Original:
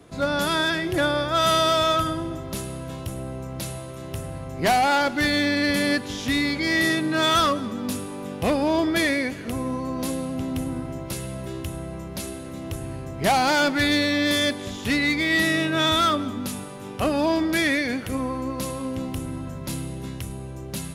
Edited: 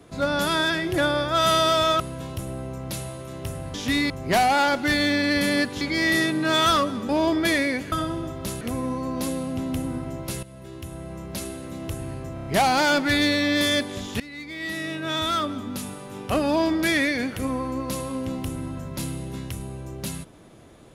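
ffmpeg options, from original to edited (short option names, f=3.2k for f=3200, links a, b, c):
-filter_complex "[0:a]asplit=14[a][b][c][d][e][f][g][h][i][j][k][l][m][n];[a]atrim=end=2.002[o];[b]atrim=start=2.688:end=4.432[p];[c]atrim=start=6.138:end=6.502[q];[d]atrim=start=4.428:end=6.142[r];[e]atrim=start=6.498:end=7.782[s];[f]atrim=start=8.598:end=9.432[t];[g]atrim=start=1.998:end=2.692[u];[h]atrim=start=9.428:end=11.25,asetpts=PTS-STARTPTS,afade=t=out:st=1.818:d=0.004:c=hsin:silence=0.199526[v];[i]atrim=start=11.25:end=13.192,asetpts=PTS-STARTPTS,afade=t=in:d=0.94:silence=0.199526[w];[j]atrim=start=13.158:end=13.192[x];[k]atrim=start=13.158:end=13.192[y];[l]atrim=start=13.158:end=13.192[z];[m]atrim=start=13.158:end=14.9,asetpts=PTS-STARTPTS,afade=t=out:st=1.738:d=0.004:c=hsin:silence=0.0841395[aa];[n]atrim=start=14.9,asetpts=PTS-STARTPTS,afade=t=in:d=1.98:silence=0.0841395[ab];[o][p]acrossfade=d=0.004:c1=hsin:c2=hsin[ac];[ac][q]acrossfade=d=0.004:c1=hsin:c2=hsin[ad];[ad][r]acrossfade=d=0.004:c1=hsin:c2=hsin[ae];[ae][s]acrossfade=d=0.004:c1=hsin:c2=hsin[af];[af][t]acrossfade=d=0.004:c1=hsin:c2=hsin[ag];[ag][u]acrossfade=d=0.004:c1=hsin:c2=hsin[ah];[v][w]concat=n=2:v=0:a=1[ai];[ah][ai]acrossfade=d=0.004:c1=hsin:c2=hsin[aj];[aj][x]acrossfade=d=0.004:c1=hsin:c2=hsin[ak];[ak][y]acrossfade=d=0.004:c1=hsin:c2=hsin[al];[al][z]acrossfade=d=0.004:c1=hsin:c2=hsin[am];[aa][ab]concat=n=2:v=0:a=1[an];[am][an]acrossfade=d=0.004:c1=hsin:c2=hsin"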